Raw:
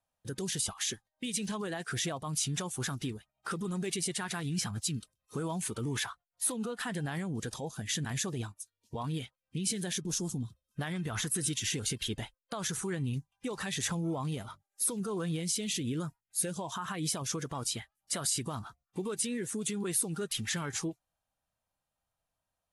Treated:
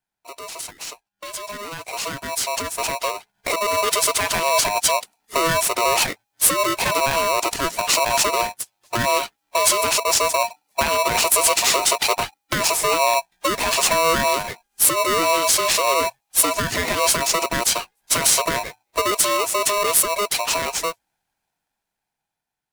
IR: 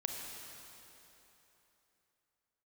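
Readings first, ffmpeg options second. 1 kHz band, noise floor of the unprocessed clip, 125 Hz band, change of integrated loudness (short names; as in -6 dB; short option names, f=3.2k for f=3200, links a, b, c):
+23.0 dB, under -85 dBFS, -1.0 dB, +15.5 dB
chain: -af "dynaudnorm=f=820:g=7:m=16.5dB,aeval=exprs='val(0)*sgn(sin(2*PI*820*n/s))':c=same"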